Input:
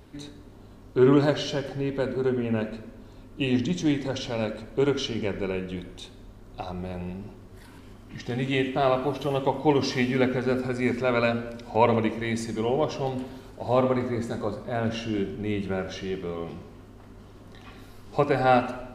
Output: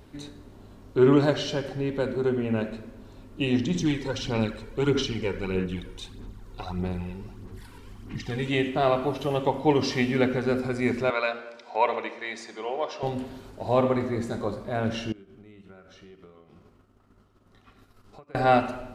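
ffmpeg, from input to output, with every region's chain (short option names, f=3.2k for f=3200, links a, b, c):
-filter_complex "[0:a]asettb=1/sr,asplit=3[a][b][c];[a]atrim=end=3.744[d];[b]atrim=start=3.74:end=8.5,asetpts=PTS-STARTPTS,afade=t=in:d=0.004:c=qsin,afade=t=out:st=4.756:d=0.004:c=qsin,equalizer=f=610:t=o:w=0.28:g=-12.5,aphaser=in_gain=1:out_gain=1:delay=2.2:decay=0.49:speed=1.6:type=sinusoidal[e];[c]atrim=start=8.496[f];[d][e]acrossfade=d=0.004:c1=hsin:c2=qsin[g];[g][f]acrossfade=d=0.004:c1=qsin:c2=hsin,asettb=1/sr,asplit=3[h][i][j];[h]atrim=end=11.104[k];[i]atrim=start=11.1:end=13.03,asetpts=PTS-STARTPTS,afade=t=in:d=0.004:c=qsin,afade=t=out:st=1.926:d=0.004:c=qsin,highpass=620,lowpass=5.2k,bandreject=f=2.9k:w=13[l];[j]atrim=start=13.026[m];[k][l]acrossfade=d=0.004:c1=hsin:c2=qsin[n];[n][m]acrossfade=d=0.004:c1=qsin:c2=hsin,asettb=1/sr,asplit=3[o][p][q];[o]atrim=end=15.124[r];[p]atrim=start=15.12:end=18.35,asetpts=PTS-STARTPTS,afade=t=in:d=0.004:c=qsin,afade=t=out:st=3.226:d=0.004:c=qsin,acompressor=threshold=-39dB:ratio=20:attack=3.2:release=140:knee=1:detection=peak,agate=range=-33dB:threshold=-38dB:ratio=3:release=100:detection=peak,equalizer=f=1.3k:t=o:w=0.23:g=10[s];[q]atrim=start=18.346[t];[r][s]acrossfade=d=0.004:c1=hsin:c2=qsin[u];[u][t]acrossfade=d=0.004:c1=qsin:c2=hsin"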